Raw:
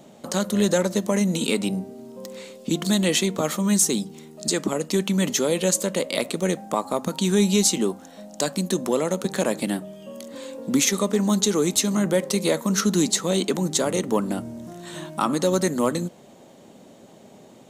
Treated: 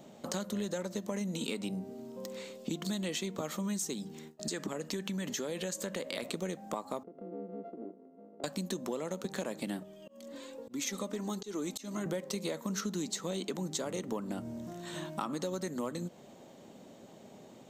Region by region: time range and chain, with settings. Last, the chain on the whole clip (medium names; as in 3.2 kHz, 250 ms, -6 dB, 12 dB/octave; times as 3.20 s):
3.93–6.23 s: peaking EQ 1.7 kHz +7.5 dB 0.22 oct + compression 2:1, threshold -27 dBFS + gate with hold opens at -33 dBFS, closes at -39 dBFS
7.03–8.44 s: sorted samples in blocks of 64 samples + Butterworth band-pass 350 Hz, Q 1.3 + compression 2:1, threshold -44 dBFS
9.83–12.06 s: flange 1.3 Hz, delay 2.2 ms, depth 1.7 ms, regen +34% + slow attack 226 ms
whole clip: peaking EQ 10 kHz -12 dB 0.24 oct; compression, threshold -28 dBFS; trim -5 dB